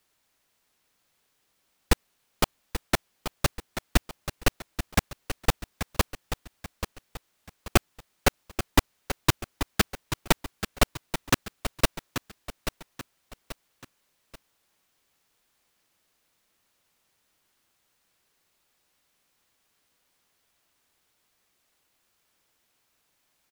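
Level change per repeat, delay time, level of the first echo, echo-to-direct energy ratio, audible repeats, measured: -8.0 dB, 0.834 s, -10.0 dB, -9.5 dB, 3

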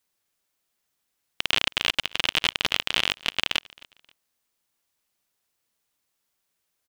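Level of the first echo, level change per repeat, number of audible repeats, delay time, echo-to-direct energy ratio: -23.5 dB, -10.5 dB, 2, 0.266 s, -23.0 dB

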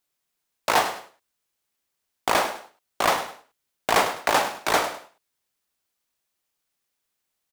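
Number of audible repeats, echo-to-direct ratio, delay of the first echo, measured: 2, -11.5 dB, 0.102 s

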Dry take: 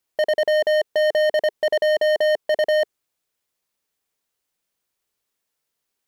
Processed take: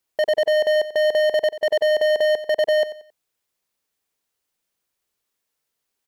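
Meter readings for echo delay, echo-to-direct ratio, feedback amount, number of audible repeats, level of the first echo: 90 ms, -13.5 dB, 32%, 3, -14.0 dB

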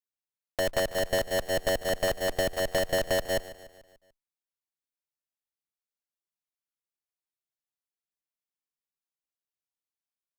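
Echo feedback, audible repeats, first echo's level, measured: 52%, 4, -16.0 dB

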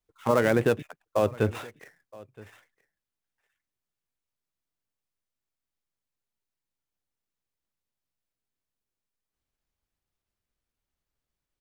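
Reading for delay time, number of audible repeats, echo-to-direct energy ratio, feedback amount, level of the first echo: 0.97 s, 1, -22.0 dB, no steady repeat, -22.0 dB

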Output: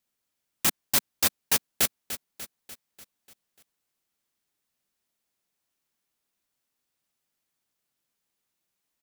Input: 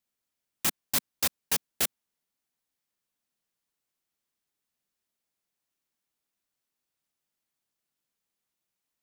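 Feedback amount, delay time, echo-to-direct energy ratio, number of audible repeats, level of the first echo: 56%, 0.295 s, -11.0 dB, 5, -12.5 dB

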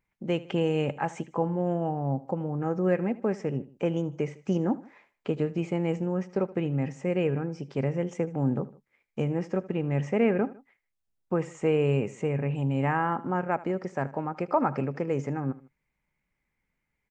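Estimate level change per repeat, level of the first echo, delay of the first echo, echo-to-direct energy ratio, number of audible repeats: -6.5 dB, -18.5 dB, 77 ms, -17.5 dB, 2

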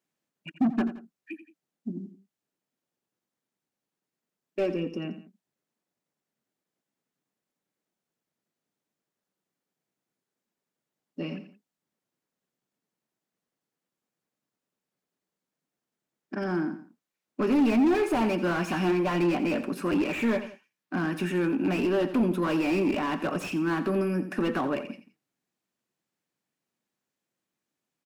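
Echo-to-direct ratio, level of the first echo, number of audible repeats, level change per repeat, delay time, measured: -12.0 dB, -12.5 dB, 2, -7.5 dB, 86 ms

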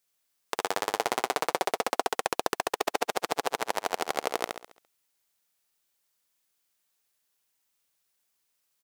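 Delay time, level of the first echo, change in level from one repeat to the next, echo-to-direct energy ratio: 68 ms, -4.0 dB, -7.0 dB, -3.0 dB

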